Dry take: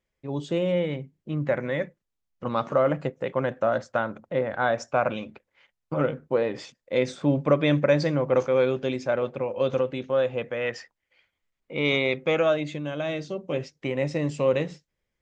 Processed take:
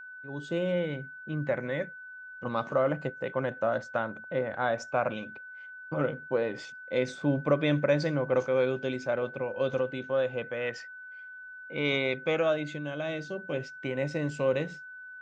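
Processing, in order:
fade in at the beginning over 0.57 s
steady tone 1,500 Hz −38 dBFS
level −4.5 dB

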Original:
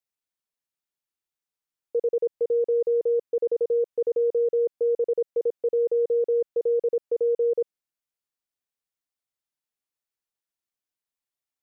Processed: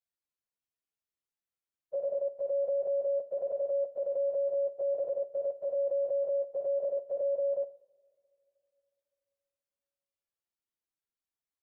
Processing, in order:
partials spread apart or drawn together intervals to 127%
brickwall limiter −28.5 dBFS, peak gain reduction 10 dB
coupled-rooms reverb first 0.5 s, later 3 s, from −22 dB, DRR 11 dB
level +1 dB

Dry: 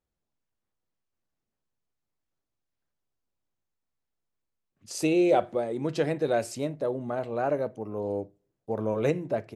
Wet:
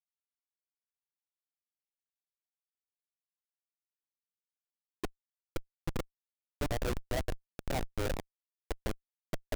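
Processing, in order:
delay that plays each chunk backwards 262 ms, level −6.5 dB
high-pass filter 260 Hz 24 dB per octave
noise gate −34 dBFS, range −12 dB
parametric band 1,800 Hz −9.5 dB 0.54 octaves
0:07.36–0:07.90: compressor whose output falls as the input rises −34 dBFS, ratio −0.5
flanger swept by the level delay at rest 10 ms, full sweep at −22.5 dBFS
gate with flip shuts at −22 dBFS, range −29 dB
comparator with hysteresis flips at −30.5 dBFS
level +11 dB

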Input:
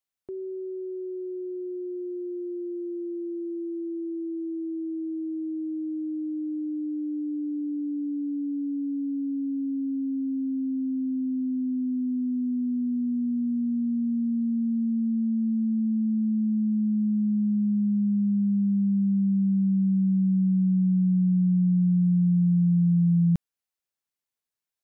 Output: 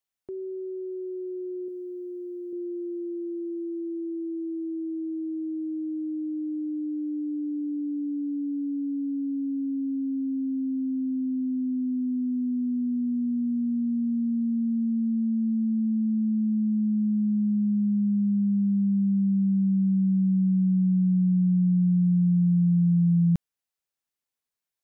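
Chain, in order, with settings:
0:01.68–0:02.53: spectral tilt +2 dB per octave

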